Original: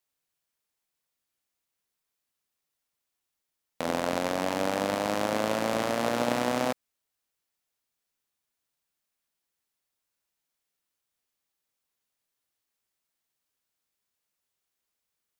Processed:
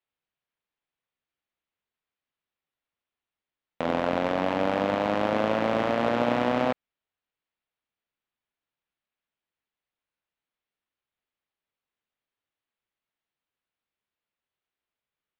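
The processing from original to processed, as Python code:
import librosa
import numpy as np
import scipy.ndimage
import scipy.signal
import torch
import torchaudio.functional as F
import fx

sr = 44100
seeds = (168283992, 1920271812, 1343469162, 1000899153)

y = scipy.signal.sosfilt(scipy.signal.butter(4, 3500.0, 'lowpass', fs=sr, output='sos'), x)
y = fx.leveller(y, sr, passes=1)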